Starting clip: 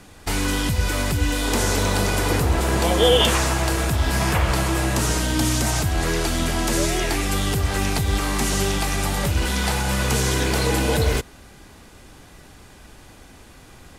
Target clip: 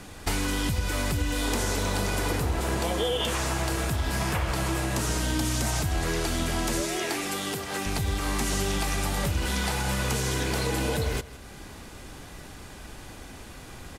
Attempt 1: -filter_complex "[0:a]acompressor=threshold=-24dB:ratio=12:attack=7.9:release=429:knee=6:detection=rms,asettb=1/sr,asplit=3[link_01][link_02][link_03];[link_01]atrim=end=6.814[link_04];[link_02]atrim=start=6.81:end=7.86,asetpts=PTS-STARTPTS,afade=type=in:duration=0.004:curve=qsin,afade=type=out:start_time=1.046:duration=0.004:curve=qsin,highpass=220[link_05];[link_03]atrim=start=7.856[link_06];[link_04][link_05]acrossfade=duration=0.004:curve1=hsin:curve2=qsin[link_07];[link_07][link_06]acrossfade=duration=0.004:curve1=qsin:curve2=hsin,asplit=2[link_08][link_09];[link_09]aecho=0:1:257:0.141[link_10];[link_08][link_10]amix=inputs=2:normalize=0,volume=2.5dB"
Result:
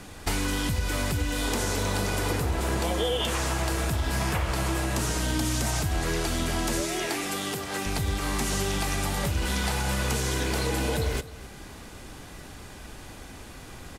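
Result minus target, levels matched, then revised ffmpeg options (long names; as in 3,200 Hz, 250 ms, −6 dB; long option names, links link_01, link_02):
echo 97 ms late
-filter_complex "[0:a]acompressor=threshold=-24dB:ratio=12:attack=7.9:release=429:knee=6:detection=rms,asettb=1/sr,asplit=3[link_01][link_02][link_03];[link_01]atrim=end=6.814[link_04];[link_02]atrim=start=6.81:end=7.86,asetpts=PTS-STARTPTS,afade=type=in:duration=0.004:curve=qsin,afade=type=out:start_time=1.046:duration=0.004:curve=qsin,highpass=220[link_05];[link_03]atrim=start=7.856[link_06];[link_04][link_05]acrossfade=duration=0.004:curve1=hsin:curve2=qsin[link_07];[link_07][link_06]acrossfade=duration=0.004:curve1=qsin:curve2=hsin,asplit=2[link_08][link_09];[link_09]aecho=0:1:160:0.141[link_10];[link_08][link_10]amix=inputs=2:normalize=0,volume=2.5dB"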